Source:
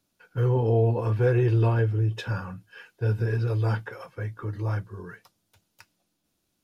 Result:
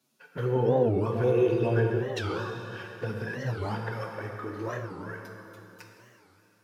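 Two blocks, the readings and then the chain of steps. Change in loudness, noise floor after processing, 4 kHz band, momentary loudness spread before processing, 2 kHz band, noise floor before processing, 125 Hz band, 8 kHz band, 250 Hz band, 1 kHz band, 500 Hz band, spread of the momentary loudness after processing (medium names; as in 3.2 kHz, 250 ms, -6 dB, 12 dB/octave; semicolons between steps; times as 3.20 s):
-3.5 dB, -64 dBFS, +2.0 dB, 18 LU, +0.5 dB, -76 dBFS, -8.0 dB, no reading, +1.0 dB, +1.0 dB, +1.5 dB, 17 LU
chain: high-pass 150 Hz 24 dB/octave; in parallel at -2 dB: compression 12:1, threshold -38 dBFS, peak gain reduction 19.5 dB; on the sum: touch-sensitive flanger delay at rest 8.2 ms, full sweep at -20.5 dBFS; plate-style reverb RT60 3.3 s, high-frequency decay 0.8×, DRR 1.5 dB; warped record 45 rpm, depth 250 cents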